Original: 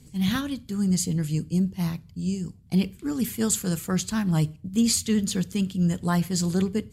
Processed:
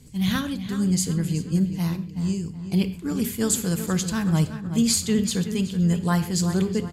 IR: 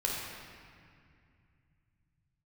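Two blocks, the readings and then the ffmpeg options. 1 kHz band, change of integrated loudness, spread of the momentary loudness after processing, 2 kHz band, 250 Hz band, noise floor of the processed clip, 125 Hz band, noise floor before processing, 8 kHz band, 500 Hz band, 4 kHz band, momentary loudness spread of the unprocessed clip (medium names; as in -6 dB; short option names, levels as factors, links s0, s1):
+2.0 dB, +1.5 dB, 6 LU, +2.5 dB, +1.5 dB, -37 dBFS, +2.0 dB, -52 dBFS, +1.5 dB, +2.5 dB, +2.0 dB, 7 LU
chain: -filter_complex "[0:a]asplit=2[s0][s1];[s1]adelay=375,lowpass=f=3300:p=1,volume=0.316,asplit=2[s2][s3];[s3]adelay=375,lowpass=f=3300:p=1,volume=0.41,asplit=2[s4][s5];[s5]adelay=375,lowpass=f=3300:p=1,volume=0.41,asplit=2[s6][s7];[s7]adelay=375,lowpass=f=3300:p=1,volume=0.41[s8];[s0][s2][s4][s6][s8]amix=inputs=5:normalize=0,asplit=2[s9][s10];[1:a]atrim=start_sample=2205,afade=t=out:st=0.19:d=0.01,atrim=end_sample=8820[s11];[s10][s11]afir=irnorm=-1:irlink=0,volume=0.211[s12];[s9][s12]amix=inputs=2:normalize=0"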